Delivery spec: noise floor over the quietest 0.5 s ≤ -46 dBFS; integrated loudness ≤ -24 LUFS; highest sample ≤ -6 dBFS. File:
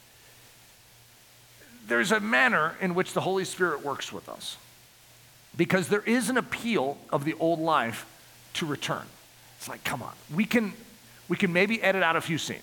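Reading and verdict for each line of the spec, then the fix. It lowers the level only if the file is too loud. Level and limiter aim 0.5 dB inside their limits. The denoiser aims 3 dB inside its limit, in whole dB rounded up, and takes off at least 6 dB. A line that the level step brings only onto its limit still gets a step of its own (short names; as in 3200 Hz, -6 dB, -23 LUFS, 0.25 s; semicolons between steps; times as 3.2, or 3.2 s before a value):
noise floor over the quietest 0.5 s -55 dBFS: OK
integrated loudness -27.0 LUFS: OK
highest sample -9.0 dBFS: OK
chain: none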